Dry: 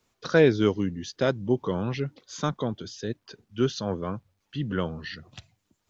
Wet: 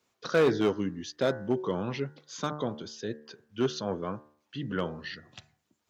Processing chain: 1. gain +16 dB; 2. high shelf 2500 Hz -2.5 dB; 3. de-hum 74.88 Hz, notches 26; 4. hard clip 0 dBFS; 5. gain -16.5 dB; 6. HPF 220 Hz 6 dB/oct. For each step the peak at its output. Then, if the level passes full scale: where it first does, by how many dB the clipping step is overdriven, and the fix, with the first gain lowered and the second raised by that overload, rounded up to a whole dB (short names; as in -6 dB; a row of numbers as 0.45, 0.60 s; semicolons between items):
+9.0, +8.5, +8.5, 0.0, -16.5, -13.0 dBFS; step 1, 8.5 dB; step 1 +7 dB, step 5 -7.5 dB